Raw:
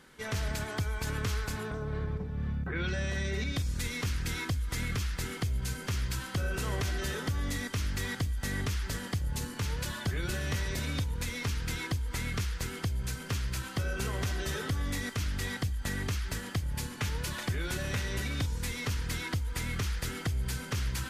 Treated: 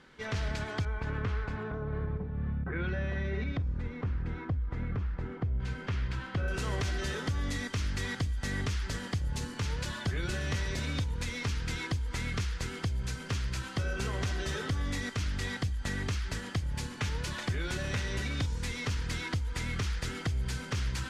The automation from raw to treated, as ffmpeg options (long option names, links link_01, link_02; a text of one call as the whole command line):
ffmpeg -i in.wav -af "asetnsamples=nb_out_samples=441:pad=0,asendcmd='0.85 lowpass f 2000;3.57 lowpass f 1100;5.6 lowpass f 2700;6.48 lowpass f 7300',lowpass=4900" out.wav